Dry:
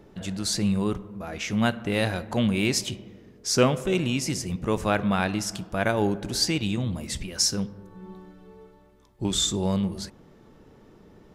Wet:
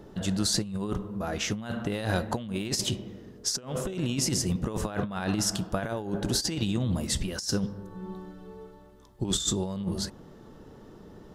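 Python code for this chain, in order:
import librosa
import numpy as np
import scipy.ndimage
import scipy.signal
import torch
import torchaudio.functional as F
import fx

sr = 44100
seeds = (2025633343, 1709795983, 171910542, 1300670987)

y = fx.peak_eq(x, sr, hz=2300.0, db=-8.5, octaves=0.35)
y = fx.over_compress(y, sr, threshold_db=-28.0, ratio=-0.5)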